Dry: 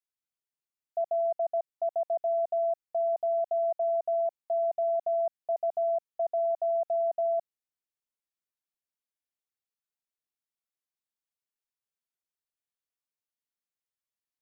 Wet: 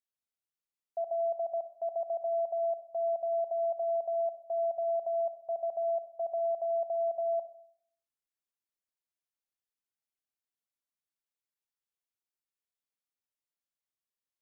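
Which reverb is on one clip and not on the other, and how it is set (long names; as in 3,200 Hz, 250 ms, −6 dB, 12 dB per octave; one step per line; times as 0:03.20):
four-comb reverb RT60 0.62 s, combs from 29 ms, DRR 9 dB
level −4.5 dB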